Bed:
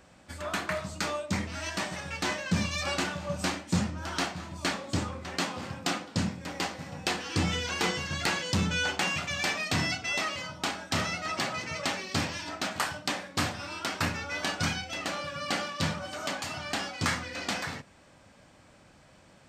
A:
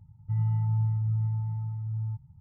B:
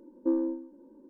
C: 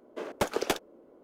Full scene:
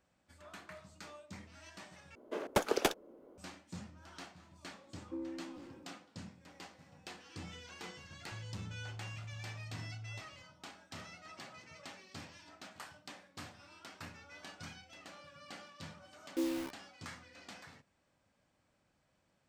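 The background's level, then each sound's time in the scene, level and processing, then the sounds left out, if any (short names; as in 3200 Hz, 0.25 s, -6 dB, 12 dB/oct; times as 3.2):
bed -19.5 dB
2.15 replace with C -2 dB
4.86 add B -16 dB + sustainer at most 26 dB/s
8.03 add A -12.5 dB + limiter -30.5 dBFS
16.11 add B -8 dB + bit-crush 6-bit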